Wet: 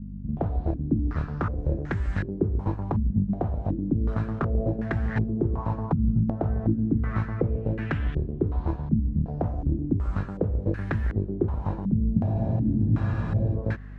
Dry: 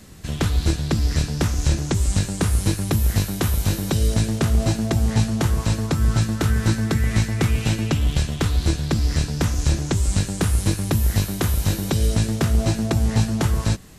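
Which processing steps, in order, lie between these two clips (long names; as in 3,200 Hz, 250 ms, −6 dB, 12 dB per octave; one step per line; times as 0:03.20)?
mains hum 50 Hz, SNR 13 dB
frozen spectrum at 0:12.21, 1.33 s
low-pass on a step sequencer 2.7 Hz 210–1,700 Hz
level −7.5 dB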